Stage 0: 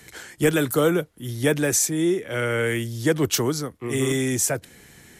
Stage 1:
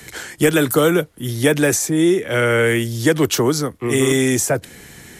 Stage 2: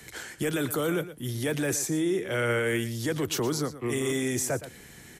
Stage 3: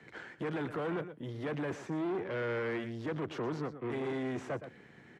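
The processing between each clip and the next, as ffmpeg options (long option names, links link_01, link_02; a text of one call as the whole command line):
ffmpeg -i in.wav -filter_complex "[0:a]acrossover=split=230|1500[link_01][link_02][link_03];[link_01]acompressor=threshold=-32dB:ratio=4[link_04];[link_02]acompressor=threshold=-21dB:ratio=4[link_05];[link_03]acompressor=threshold=-28dB:ratio=4[link_06];[link_04][link_05][link_06]amix=inputs=3:normalize=0,volume=8.5dB" out.wav
ffmpeg -i in.wav -af "alimiter=limit=-11dB:level=0:latency=1:release=14,aecho=1:1:117:0.2,volume=-8.5dB" out.wav
ffmpeg -i in.wav -af "aeval=exprs='(tanh(35.5*val(0)+0.75)-tanh(0.75))/35.5':channel_layout=same,highpass=130,lowpass=2000" out.wav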